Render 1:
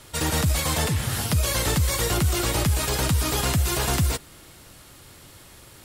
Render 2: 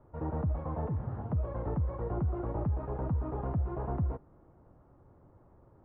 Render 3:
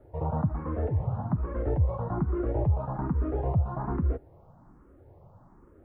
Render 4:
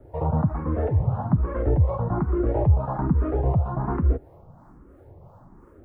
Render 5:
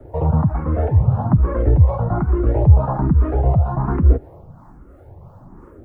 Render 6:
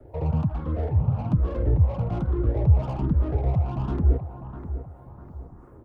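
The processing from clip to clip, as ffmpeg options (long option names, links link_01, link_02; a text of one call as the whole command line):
ffmpeg -i in.wav -af "lowpass=frequency=1000:width=0.5412,lowpass=frequency=1000:width=1.3066,volume=-8.5dB" out.wav
ffmpeg -i in.wav -filter_complex "[0:a]asplit=2[link_01][link_02];[link_02]afreqshift=1.2[link_03];[link_01][link_03]amix=inputs=2:normalize=1,volume=8dB" out.wav
ffmpeg -i in.wav -filter_complex "[0:a]acrossover=split=400[link_01][link_02];[link_01]aeval=exprs='val(0)*(1-0.5/2+0.5/2*cos(2*PI*2.9*n/s))':channel_layout=same[link_03];[link_02]aeval=exprs='val(0)*(1-0.5/2-0.5/2*cos(2*PI*2.9*n/s))':channel_layout=same[link_04];[link_03][link_04]amix=inputs=2:normalize=0,volume=8dB" out.wav
ffmpeg -i in.wav -filter_complex "[0:a]aphaser=in_gain=1:out_gain=1:delay=1.5:decay=0.32:speed=0.71:type=sinusoidal,acrossover=split=160|3000[link_01][link_02][link_03];[link_02]acompressor=threshold=-24dB:ratio=6[link_04];[link_01][link_04][link_03]amix=inputs=3:normalize=0,volume=5dB" out.wav
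ffmpeg -i in.wav -filter_complex "[0:a]aecho=1:1:651|1302|1953|2604:0.251|0.1|0.0402|0.0161,acrossover=split=630[link_01][link_02];[link_02]asoftclip=type=tanh:threshold=-33dB[link_03];[link_01][link_03]amix=inputs=2:normalize=0,volume=-7.5dB" out.wav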